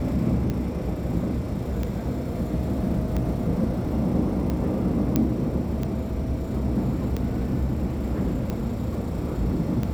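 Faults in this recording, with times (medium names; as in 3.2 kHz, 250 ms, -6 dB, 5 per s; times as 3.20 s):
tick 45 rpm -16 dBFS
5.16 s: pop -8 dBFS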